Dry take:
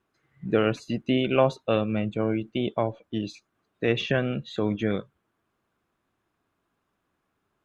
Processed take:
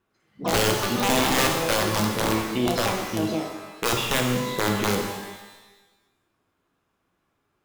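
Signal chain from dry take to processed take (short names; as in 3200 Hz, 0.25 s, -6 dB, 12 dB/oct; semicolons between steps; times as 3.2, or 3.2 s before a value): echoes that change speed 0.105 s, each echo +7 st, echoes 2, each echo -6 dB; wrapped overs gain 15.5 dB; shimmer reverb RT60 1.1 s, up +12 st, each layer -8 dB, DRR 1.5 dB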